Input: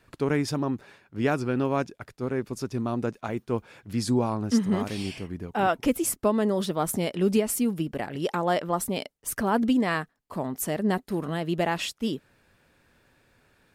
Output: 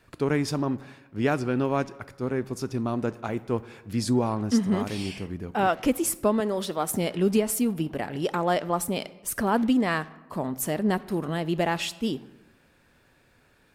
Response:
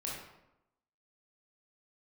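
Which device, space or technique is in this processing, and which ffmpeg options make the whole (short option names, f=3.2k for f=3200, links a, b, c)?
saturated reverb return: -filter_complex "[0:a]asettb=1/sr,asplit=3[a][b][c];[a]atrim=end=6.404[d];[b]atrim=start=6.4:end=6.9,asetpts=PTS-STARTPTS,afade=t=in:d=0.004:c=qsin,afade=t=out:st=0.496:d=0.004:c=qsin,highpass=f=360:p=1[e];[c]atrim=start=6.896[f];[d][e]acrossfade=d=0.004:c1=hsin:c2=qsin[g];[g][f]acrossfade=d=0.004:c1=qsin:c2=hsin,asplit=2[h][i];[1:a]atrim=start_sample=2205[j];[i][j]afir=irnorm=-1:irlink=0,asoftclip=type=tanh:threshold=-28dB,volume=-12.5dB[k];[h][k]amix=inputs=2:normalize=0"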